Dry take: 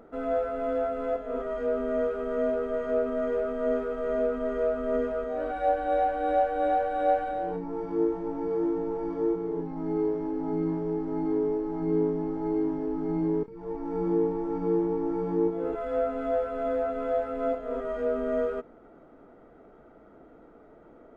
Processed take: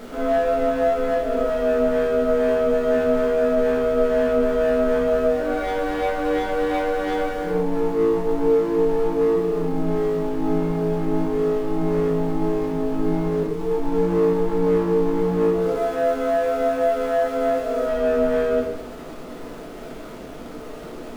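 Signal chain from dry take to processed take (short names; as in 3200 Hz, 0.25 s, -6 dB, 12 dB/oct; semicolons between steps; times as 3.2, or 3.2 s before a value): zero-crossing step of -40.5 dBFS; 15.61–17.86 low shelf 170 Hz -9.5 dB; sample leveller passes 2; shoebox room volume 220 m³, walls mixed, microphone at 1.4 m; gain -4.5 dB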